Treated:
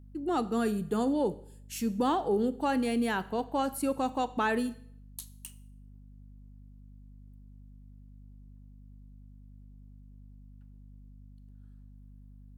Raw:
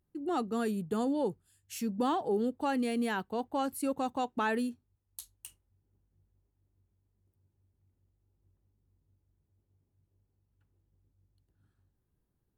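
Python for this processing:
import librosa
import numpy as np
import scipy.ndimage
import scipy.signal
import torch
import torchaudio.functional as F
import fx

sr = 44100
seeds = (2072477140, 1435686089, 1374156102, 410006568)

y = fx.rev_schroeder(x, sr, rt60_s=0.61, comb_ms=27, drr_db=15.0)
y = fx.add_hum(y, sr, base_hz=50, snr_db=17)
y = F.gain(torch.from_numpy(y), 2.5).numpy()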